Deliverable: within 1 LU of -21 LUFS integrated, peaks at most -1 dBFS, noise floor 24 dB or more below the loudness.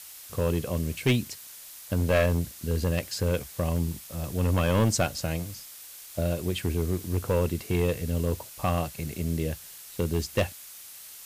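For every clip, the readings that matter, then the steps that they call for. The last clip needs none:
clipped 1.1%; flat tops at -17.0 dBFS; noise floor -45 dBFS; noise floor target -53 dBFS; loudness -28.5 LUFS; peak -17.0 dBFS; loudness target -21.0 LUFS
-> clip repair -17 dBFS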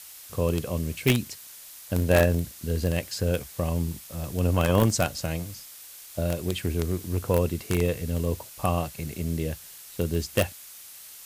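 clipped 0.0%; noise floor -45 dBFS; noise floor target -51 dBFS
-> denoiser 6 dB, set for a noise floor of -45 dBFS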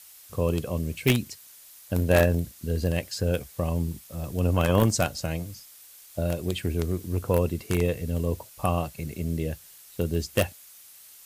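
noise floor -50 dBFS; noise floor target -52 dBFS
-> denoiser 6 dB, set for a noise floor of -50 dBFS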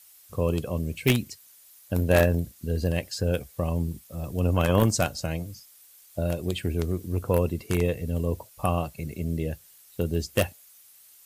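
noise floor -54 dBFS; loudness -27.5 LUFS; peak -8.0 dBFS; loudness target -21.0 LUFS
-> gain +6.5 dB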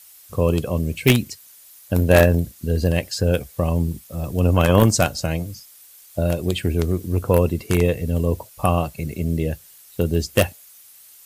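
loudness -21.0 LUFS; peak -1.5 dBFS; noise floor -48 dBFS

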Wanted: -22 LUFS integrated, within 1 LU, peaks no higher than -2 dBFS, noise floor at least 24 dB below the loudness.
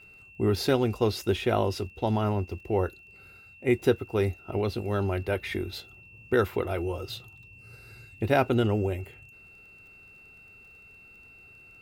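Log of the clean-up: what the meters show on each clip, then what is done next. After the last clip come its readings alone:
ticks 19/s; steady tone 2700 Hz; tone level -50 dBFS; loudness -28.0 LUFS; peak -10.0 dBFS; loudness target -22.0 LUFS
-> de-click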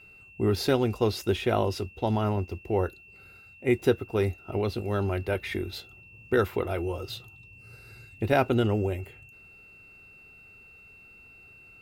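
ticks 0.17/s; steady tone 2700 Hz; tone level -50 dBFS
-> notch 2700 Hz, Q 30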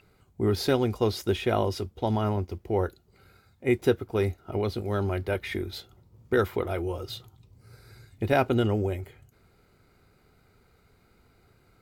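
steady tone none; loudness -28.0 LUFS; peak -10.0 dBFS; loudness target -22.0 LUFS
-> gain +6 dB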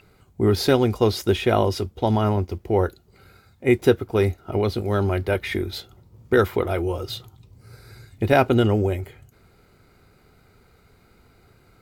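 loudness -22.0 LUFS; peak -4.0 dBFS; noise floor -57 dBFS

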